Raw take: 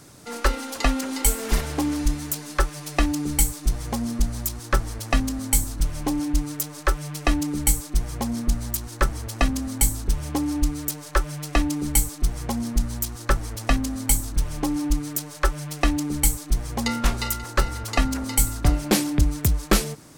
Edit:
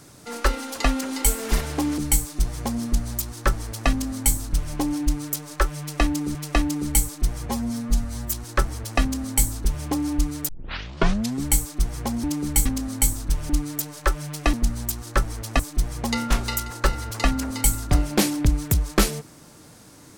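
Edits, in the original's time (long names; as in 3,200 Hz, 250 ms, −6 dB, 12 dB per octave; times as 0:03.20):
0:01.98–0:03.25: remove
0:07.07–0:07.62: repeat, 2 plays
0:08.18–0:08.75: time-stretch 1.5×
0:10.92: tape start 0.97 s
0:12.67–0:13.73: swap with 0:15.91–0:16.33
0:14.57–0:14.87: remove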